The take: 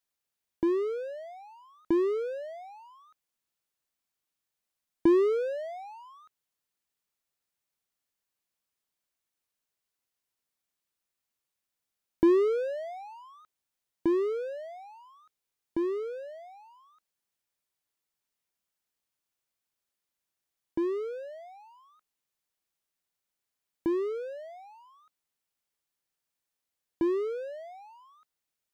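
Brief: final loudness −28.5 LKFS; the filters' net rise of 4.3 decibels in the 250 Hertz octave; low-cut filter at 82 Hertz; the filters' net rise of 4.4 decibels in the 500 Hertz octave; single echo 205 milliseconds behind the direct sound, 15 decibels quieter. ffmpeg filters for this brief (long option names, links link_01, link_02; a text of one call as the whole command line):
ffmpeg -i in.wav -af "highpass=82,equalizer=frequency=250:width_type=o:gain=4.5,equalizer=frequency=500:width_type=o:gain=4,aecho=1:1:205:0.178,volume=-3dB" out.wav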